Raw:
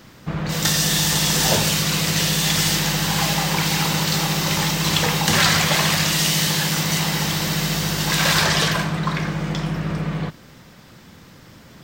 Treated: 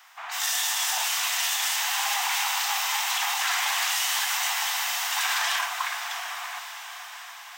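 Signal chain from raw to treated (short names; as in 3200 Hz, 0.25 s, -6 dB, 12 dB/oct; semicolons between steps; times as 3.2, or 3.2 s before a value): Chebyshev high-pass 720 Hz, order 6; bell 4400 Hz -6.5 dB 0.47 oct; limiter -15 dBFS, peak gain reduction 9 dB; time stretch by phase-locked vocoder 0.64×; diffused feedback echo 0.664 s, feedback 59%, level -10 dB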